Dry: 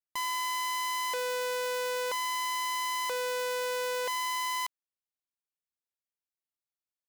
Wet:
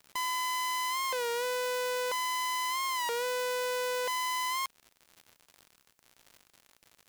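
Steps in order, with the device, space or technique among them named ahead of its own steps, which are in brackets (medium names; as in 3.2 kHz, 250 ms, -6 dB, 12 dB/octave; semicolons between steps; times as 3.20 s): warped LP (warped record 33 1/3 rpm, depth 100 cents; crackle 130 per s -41 dBFS; white noise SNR 43 dB)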